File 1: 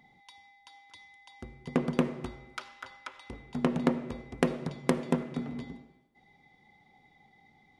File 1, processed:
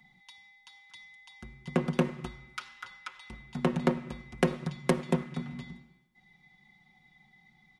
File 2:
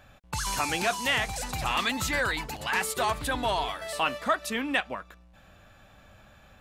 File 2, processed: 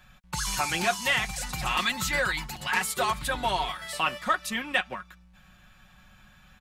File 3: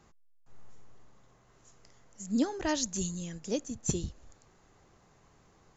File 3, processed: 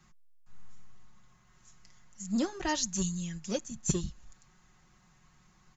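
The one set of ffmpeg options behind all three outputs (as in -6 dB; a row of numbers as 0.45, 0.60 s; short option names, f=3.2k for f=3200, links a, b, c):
-filter_complex "[0:a]aecho=1:1:5.5:0.6,acrossover=split=280|820[a][b][c];[b]aeval=exprs='sgn(val(0))*max(abs(val(0))-0.00944,0)':c=same[d];[a][d][c]amix=inputs=3:normalize=0"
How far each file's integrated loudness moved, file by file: 0.0, +0.5, 0.0 LU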